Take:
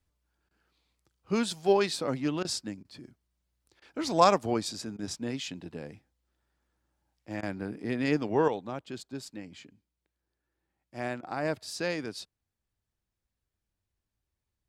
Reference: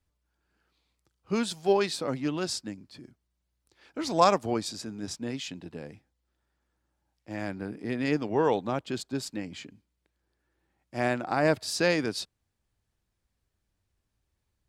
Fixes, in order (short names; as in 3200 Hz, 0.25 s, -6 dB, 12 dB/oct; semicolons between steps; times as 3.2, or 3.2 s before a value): interpolate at 0.49/2.43/2.83/3.8/4.97/7.41/11.21, 17 ms; gain 0 dB, from 8.48 s +7 dB